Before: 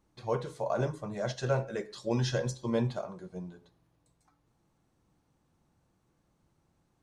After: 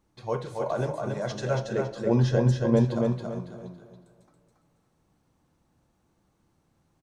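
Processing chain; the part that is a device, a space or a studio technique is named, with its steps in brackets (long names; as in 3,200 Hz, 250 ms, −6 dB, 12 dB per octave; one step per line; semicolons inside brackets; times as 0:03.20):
compressed reverb return (on a send at −12 dB: convolution reverb RT60 2.2 s, pre-delay 25 ms + downward compressor, threshold −36 dBFS, peak gain reduction 10.5 dB)
0:01.65–0:02.85: on the sum: tilt shelving filter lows +6.5 dB, about 1,400 Hz
repeating echo 278 ms, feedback 30%, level −4 dB
level +1.5 dB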